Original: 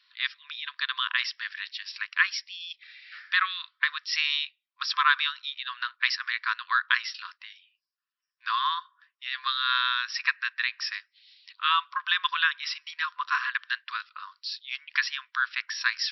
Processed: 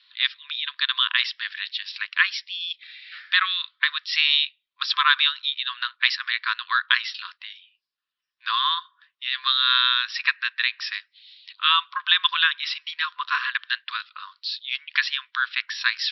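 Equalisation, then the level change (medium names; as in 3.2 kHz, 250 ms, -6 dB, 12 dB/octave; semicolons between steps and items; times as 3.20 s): resonant low-pass 3.7 kHz, resonance Q 2.6; +1.0 dB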